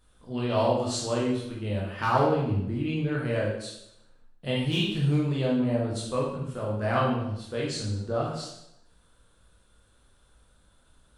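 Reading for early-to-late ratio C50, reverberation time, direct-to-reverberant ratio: 2.0 dB, 0.80 s, -5.0 dB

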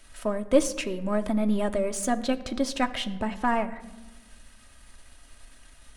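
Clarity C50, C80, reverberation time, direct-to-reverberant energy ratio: 15.5 dB, 17.0 dB, 1.2 s, 6.0 dB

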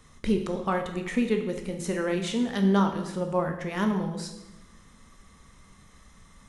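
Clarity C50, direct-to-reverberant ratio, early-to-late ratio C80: 8.0 dB, 4.0 dB, 10.5 dB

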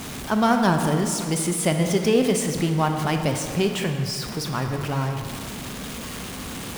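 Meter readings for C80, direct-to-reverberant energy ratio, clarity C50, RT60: 7.0 dB, 5.0 dB, 6.0 dB, 2.3 s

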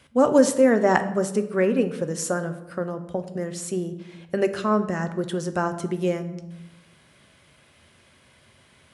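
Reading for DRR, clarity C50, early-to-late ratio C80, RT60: 8.5 dB, 12.5 dB, 14.5 dB, 0.90 s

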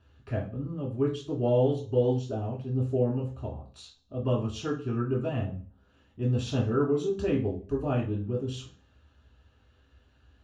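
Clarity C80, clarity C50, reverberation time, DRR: 14.5 dB, 9.0 dB, 0.45 s, -4.0 dB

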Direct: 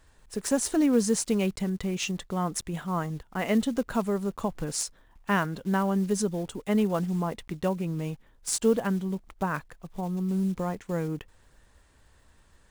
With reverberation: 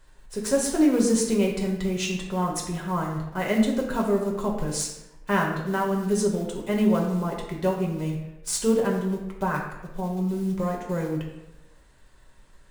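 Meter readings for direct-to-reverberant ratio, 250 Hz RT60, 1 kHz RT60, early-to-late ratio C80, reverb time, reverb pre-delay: -1.0 dB, 1.0 s, 0.85 s, 7.0 dB, 0.95 s, 5 ms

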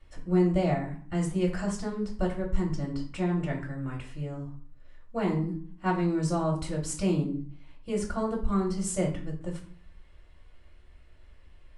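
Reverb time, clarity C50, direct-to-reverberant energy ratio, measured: 0.50 s, 8.5 dB, -3.0 dB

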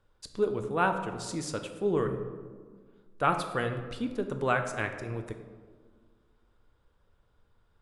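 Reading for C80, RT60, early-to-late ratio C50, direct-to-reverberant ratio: 10.0 dB, 1.6 s, 8.5 dB, 5.5 dB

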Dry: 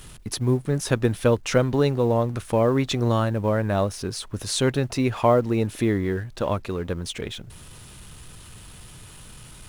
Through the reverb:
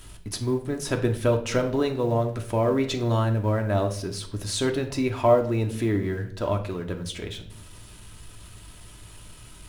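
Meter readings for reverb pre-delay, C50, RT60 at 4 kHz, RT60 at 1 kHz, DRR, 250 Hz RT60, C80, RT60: 3 ms, 11.0 dB, 0.45 s, 0.45 s, 3.5 dB, 0.90 s, 15.0 dB, 0.55 s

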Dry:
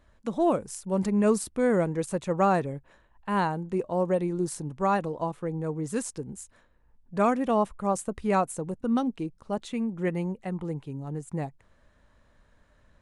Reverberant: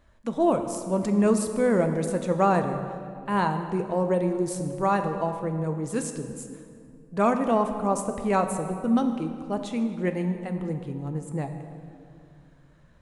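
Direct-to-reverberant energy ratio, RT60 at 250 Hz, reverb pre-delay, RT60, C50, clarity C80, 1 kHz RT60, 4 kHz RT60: 6.5 dB, 3.0 s, 5 ms, 2.4 s, 8.0 dB, 9.0 dB, 2.2 s, 1.6 s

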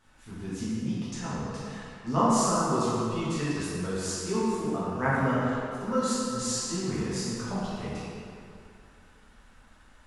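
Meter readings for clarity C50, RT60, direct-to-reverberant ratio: -4.5 dB, 2.5 s, -10.5 dB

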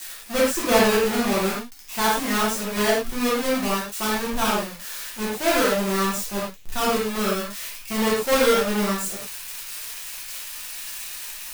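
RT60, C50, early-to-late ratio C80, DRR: not exponential, 0.5 dB, 5.5 dB, -7.0 dB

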